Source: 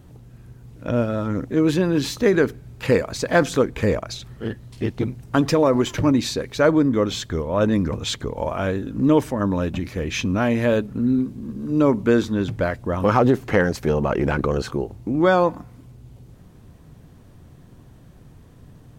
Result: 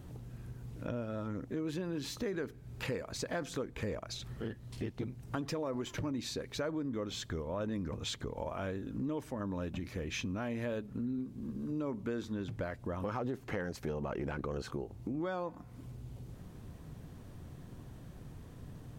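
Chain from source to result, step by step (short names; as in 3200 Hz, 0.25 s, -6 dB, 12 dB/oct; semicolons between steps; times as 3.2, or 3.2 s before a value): in parallel at -2 dB: limiter -13.5 dBFS, peak gain reduction 9.5 dB; on the sum: compressor 3:1, threshold -32 dBFS, peak gain reduction 17 dB; gain -7.5 dB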